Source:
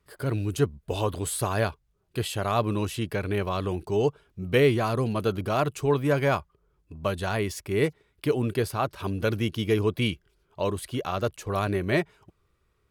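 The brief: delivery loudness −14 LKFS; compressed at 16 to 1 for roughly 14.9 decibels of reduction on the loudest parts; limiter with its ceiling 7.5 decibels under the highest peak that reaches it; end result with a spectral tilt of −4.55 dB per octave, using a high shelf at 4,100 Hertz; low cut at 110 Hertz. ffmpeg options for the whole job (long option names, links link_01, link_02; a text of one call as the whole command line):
ffmpeg -i in.wav -af "highpass=110,highshelf=frequency=4100:gain=4.5,acompressor=threshold=-31dB:ratio=16,volume=24dB,alimiter=limit=-0.5dB:level=0:latency=1" out.wav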